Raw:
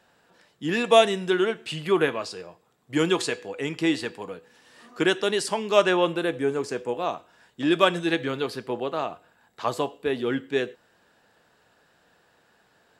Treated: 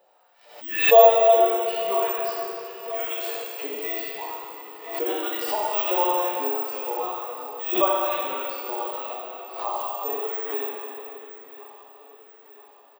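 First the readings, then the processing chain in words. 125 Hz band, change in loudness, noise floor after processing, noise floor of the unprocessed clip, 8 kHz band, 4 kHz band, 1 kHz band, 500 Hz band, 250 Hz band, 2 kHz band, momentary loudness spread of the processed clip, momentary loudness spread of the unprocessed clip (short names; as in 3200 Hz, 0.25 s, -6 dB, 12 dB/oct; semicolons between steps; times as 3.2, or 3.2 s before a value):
under -20 dB, +2.0 dB, -53 dBFS, -64 dBFS, -6.5 dB, -4.5 dB, +5.0 dB, +2.0 dB, -10.0 dB, -2.5 dB, 18 LU, 13 LU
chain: bell 1600 Hz -11.5 dB 0.27 oct; careless resampling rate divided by 2×, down filtered, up zero stuff; tilt shelf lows +5.5 dB, about 870 Hz; in parallel at +1 dB: compressor, threshold -27 dBFS, peak gain reduction 17.5 dB; on the sum: LFO high-pass saw up 2.2 Hz 520–3000 Hz; on a send: feedback echo 0.978 s, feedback 49%, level -15 dB; on the sum: plate-style reverb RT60 3 s, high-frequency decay 0.75×, DRR -4.5 dB; harmonic-percussive split percussive -11 dB; backwards sustainer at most 85 dB/s; gain -7.5 dB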